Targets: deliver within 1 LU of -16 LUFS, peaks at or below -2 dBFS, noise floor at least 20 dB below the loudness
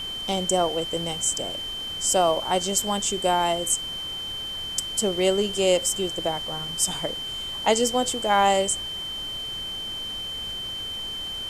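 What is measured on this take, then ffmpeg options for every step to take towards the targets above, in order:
steady tone 3100 Hz; tone level -30 dBFS; noise floor -33 dBFS; noise floor target -45 dBFS; loudness -24.5 LUFS; peak -6.0 dBFS; loudness target -16.0 LUFS
-> -af "bandreject=f=3.1k:w=30"
-af "afftdn=nr=12:nf=-33"
-af "volume=8.5dB,alimiter=limit=-2dB:level=0:latency=1"

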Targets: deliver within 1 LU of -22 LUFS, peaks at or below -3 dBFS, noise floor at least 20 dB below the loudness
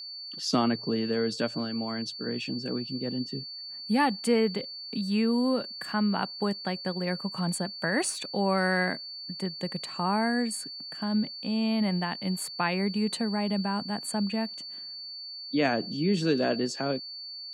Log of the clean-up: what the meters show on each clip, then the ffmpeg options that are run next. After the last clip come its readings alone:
steady tone 4500 Hz; tone level -38 dBFS; loudness -29.5 LUFS; peak -12.0 dBFS; loudness target -22.0 LUFS
-> -af "bandreject=f=4.5k:w=30"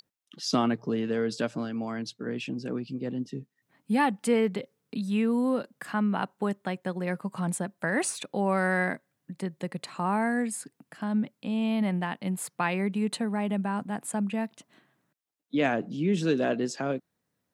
steady tone none; loudness -29.5 LUFS; peak -12.0 dBFS; loudness target -22.0 LUFS
-> -af "volume=7.5dB"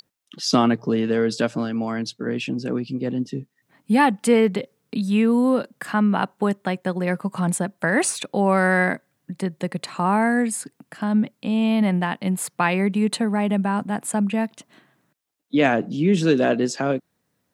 loudness -22.0 LUFS; peak -4.5 dBFS; noise floor -73 dBFS

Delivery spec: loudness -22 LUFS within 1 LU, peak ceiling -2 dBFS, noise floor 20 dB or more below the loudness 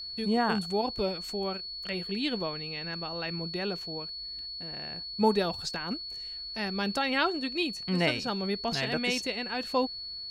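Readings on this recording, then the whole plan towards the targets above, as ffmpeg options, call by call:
steady tone 4400 Hz; tone level -37 dBFS; loudness -31.0 LUFS; peak -12.5 dBFS; loudness target -22.0 LUFS
-> -af "bandreject=f=4.4k:w=30"
-af "volume=9dB"

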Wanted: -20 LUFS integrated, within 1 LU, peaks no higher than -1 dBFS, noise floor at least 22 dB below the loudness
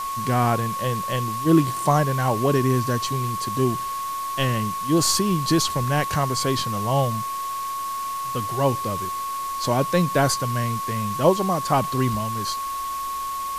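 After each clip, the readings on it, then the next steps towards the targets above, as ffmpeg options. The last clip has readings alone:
steady tone 1100 Hz; tone level -26 dBFS; noise floor -29 dBFS; noise floor target -45 dBFS; loudness -23.0 LUFS; peak -4.5 dBFS; loudness target -20.0 LUFS
-> -af "bandreject=f=1.1k:w=30"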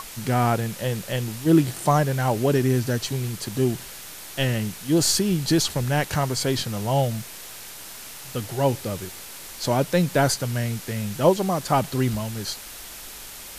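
steady tone none; noise floor -40 dBFS; noise floor target -46 dBFS
-> -af "afftdn=nr=6:nf=-40"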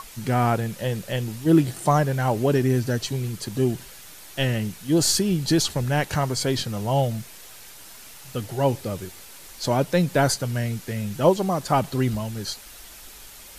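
noise floor -44 dBFS; noise floor target -46 dBFS
-> -af "afftdn=nr=6:nf=-44"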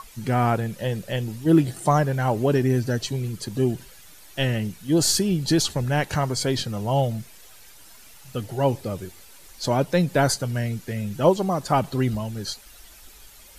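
noise floor -48 dBFS; loudness -23.5 LUFS; peak -5.5 dBFS; loudness target -20.0 LUFS
-> -af "volume=3.5dB"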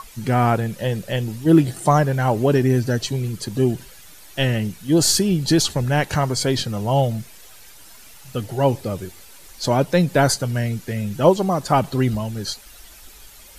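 loudness -20.0 LUFS; peak -2.0 dBFS; noise floor -44 dBFS

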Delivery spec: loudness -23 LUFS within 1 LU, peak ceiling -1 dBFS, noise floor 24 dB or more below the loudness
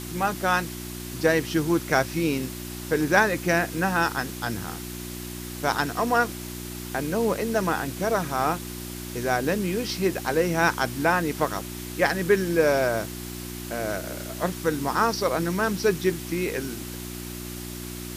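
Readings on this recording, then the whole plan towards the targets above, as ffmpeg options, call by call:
hum 60 Hz; harmonics up to 360 Hz; hum level -34 dBFS; noise floor -36 dBFS; noise floor target -50 dBFS; loudness -26.0 LUFS; peak -5.5 dBFS; loudness target -23.0 LUFS
-> -af "bandreject=f=60:t=h:w=4,bandreject=f=120:t=h:w=4,bandreject=f=180:t=h:w=4,bandreject=f=240:t=h:w=4,bandreject=f=300:t=h:w=4,bandreject=f=360:t=h:w=4"
-af "afftdn=nr=14:nf=-36"
-af "volume=3dB"

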